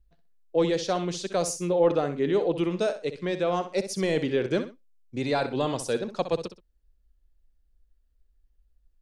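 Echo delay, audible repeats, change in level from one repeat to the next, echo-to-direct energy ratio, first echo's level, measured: 63 ms, 2, −11.5 dB, −10.5 dB, −11.0 dB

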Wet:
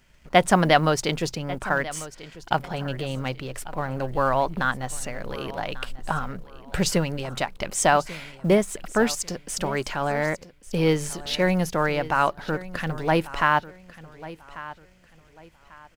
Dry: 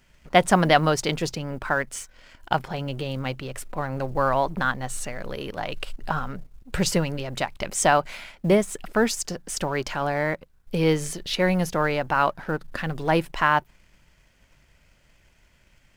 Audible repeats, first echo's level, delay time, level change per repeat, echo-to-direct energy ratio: 2, −17.0 dB, 1,143 ms, −11.0 dB, −16.5 dB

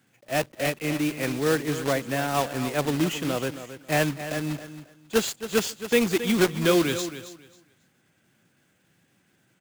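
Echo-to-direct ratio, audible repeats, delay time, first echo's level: −12.0 dB, 2, 271 ms, −12.0 dB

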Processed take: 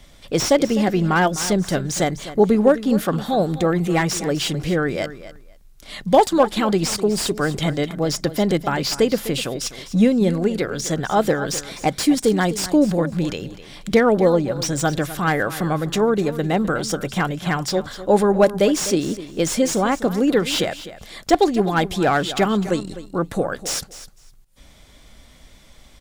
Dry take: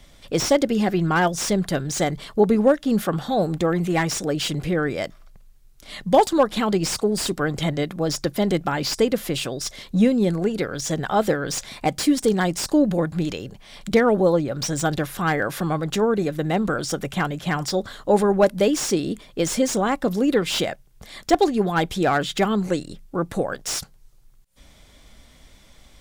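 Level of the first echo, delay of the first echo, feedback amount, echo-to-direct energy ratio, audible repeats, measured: −14.5 dB, 253 ms, 17%, −14.5 dB, 2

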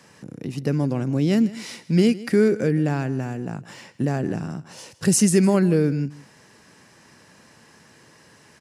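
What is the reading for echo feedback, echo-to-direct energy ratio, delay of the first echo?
repeats not evenly spaced, −18.5 dB, 159 ms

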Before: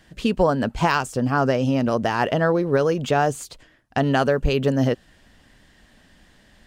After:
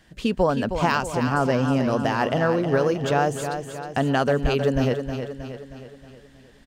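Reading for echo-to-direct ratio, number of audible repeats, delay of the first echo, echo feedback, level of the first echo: −6.5 dB, 5, 315 ms, 52%, −8.0 dB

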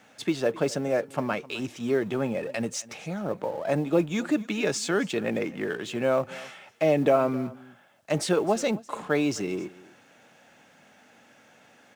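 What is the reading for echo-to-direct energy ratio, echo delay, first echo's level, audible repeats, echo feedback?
−20.5 dB, 259 ms, −20.5 dB, 1, repeats not evenly spaced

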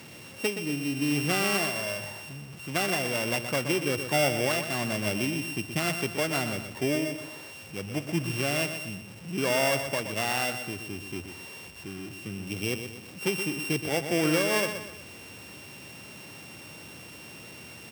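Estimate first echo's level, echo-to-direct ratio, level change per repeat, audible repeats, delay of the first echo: −9.0 dB, −8.0 dB, −7.5 dB, 3, 123 ms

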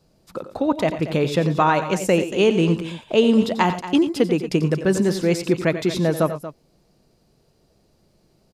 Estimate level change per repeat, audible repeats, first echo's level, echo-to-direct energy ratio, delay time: repeats not evenly spaced, 2, −12.0 dB, −9.0 dB, 90 ms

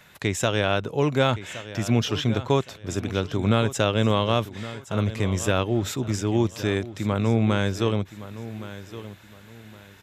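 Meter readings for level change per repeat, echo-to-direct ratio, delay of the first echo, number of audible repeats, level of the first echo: −11.0 dB, −14.0 dB, 1,117 ms, 2, −14.5 dB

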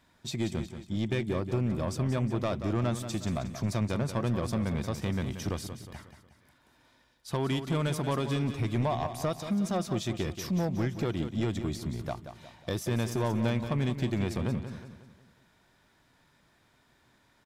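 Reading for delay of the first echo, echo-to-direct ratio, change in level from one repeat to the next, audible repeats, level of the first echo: 181 ms, −9.0 dB, −7.0 dB, 4, −10.0 dB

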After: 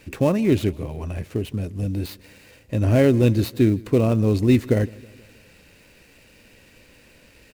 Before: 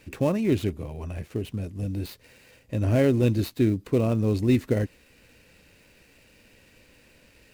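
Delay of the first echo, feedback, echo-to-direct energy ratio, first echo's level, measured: 160 ms, 56%, −22.5 dB, −24.0 dB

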